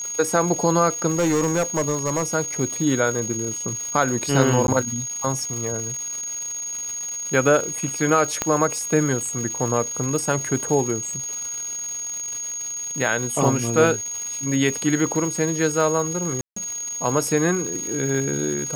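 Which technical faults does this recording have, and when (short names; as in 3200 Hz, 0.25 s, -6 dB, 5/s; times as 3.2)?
crackle 500/s -29 dBFS
tone 6600 Hz -27 dBFS
1.11–2.24 clipped -16.5 dBFS
4.67–4.68 gap 11 ms
8.42 pop -6 dBFS
16.41–16.56 gap 0.154 s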